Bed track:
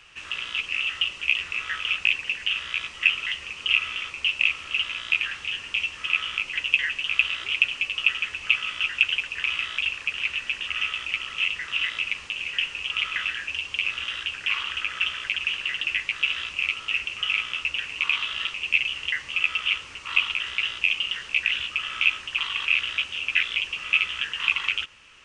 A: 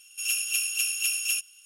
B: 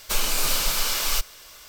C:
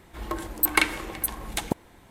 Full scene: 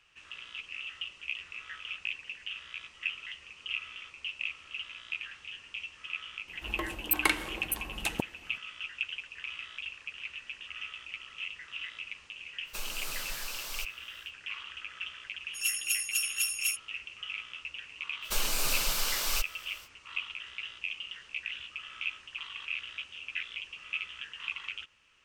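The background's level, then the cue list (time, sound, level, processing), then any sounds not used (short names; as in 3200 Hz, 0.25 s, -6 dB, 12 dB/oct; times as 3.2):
bed track -14 dB
6.48 add C -5.5 dB
12.64 add B -15 dB, fades 0.05 s
15.36 add A -0.5 dB + per-bin expansion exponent 2
18.21 add B -6.5 dB, fades 0.05 s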